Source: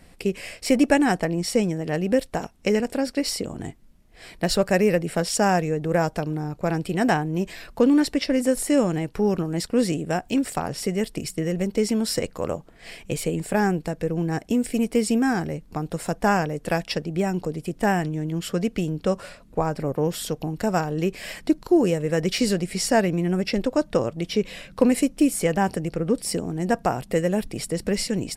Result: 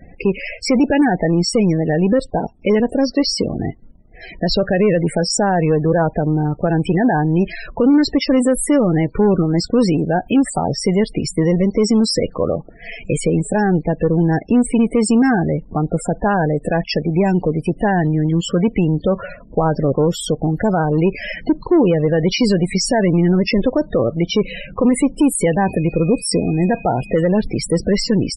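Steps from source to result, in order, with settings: peak limiter -15 dBFS, peak gain reduction 10 dB; waveshaping leveller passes 1; 25.64–27.13 s: whistle 2.5 kHz -45 dBFS; loudest bins only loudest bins 32; trim +8 dB

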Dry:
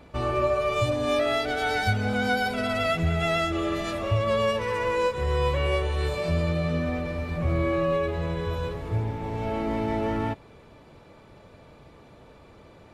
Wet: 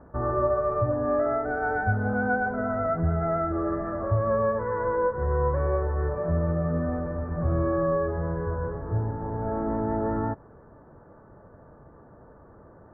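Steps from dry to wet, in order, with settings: steep low-pass 1.7 kHz 72 dB/octave

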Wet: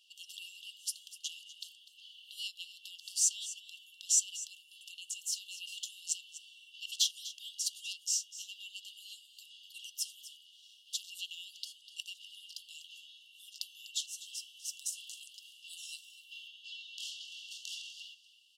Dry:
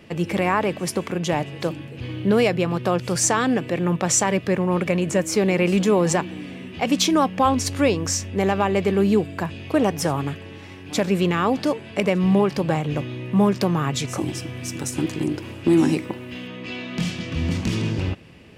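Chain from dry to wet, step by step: brick-wall FIR high-pass 2.7 kHz; on a send: delay 248 ms -15 dB; on the sum: trim -7 dB

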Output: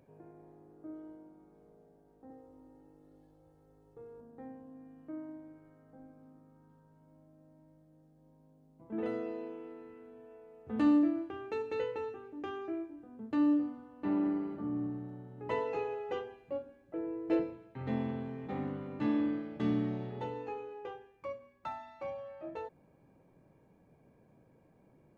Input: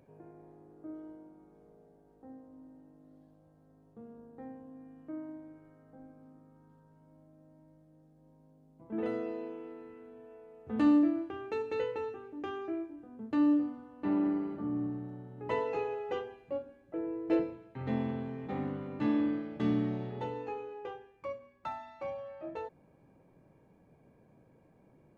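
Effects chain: 2.30–4.21 s: comb 2.3 ms, depth 99%; trim -1.5 dB

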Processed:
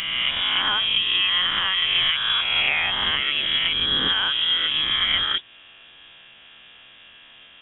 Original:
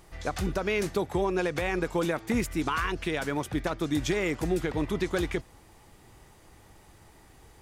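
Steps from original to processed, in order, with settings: reverse spectral sustain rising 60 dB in 1.58 s; high-pass 200 Hz 12 dB/octave; in parallel at -2.5 dB: compression, threshold -35 dBFS, peak gain reduction 13.5 dB; on the sum: frequency inversion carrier 3.6 kHz; trim +2.5 dB

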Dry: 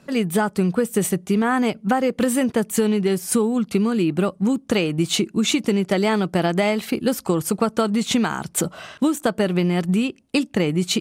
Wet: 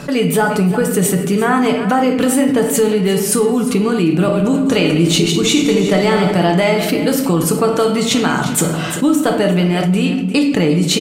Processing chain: 4.10–6.31 s: backward echo that repeats 102 ms, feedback 46%, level -6 dB; comb 6.9 ms, depth 42%; delay 350 ms -15.5 dB; reverberation RT60 0.75 s, pre-delay 6 ms, DRR 3.5 dB; level flattener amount 50%; trim +1 dB

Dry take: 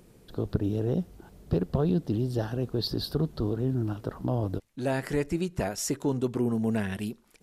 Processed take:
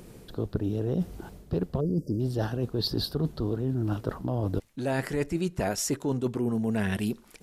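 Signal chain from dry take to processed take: spectral selection erased 1.81–2.20 s, 640–4600 Hz; reverse; compression, threshold -33 dBFS, peak gain reduction 13 dB; reverse; trim +8 dB

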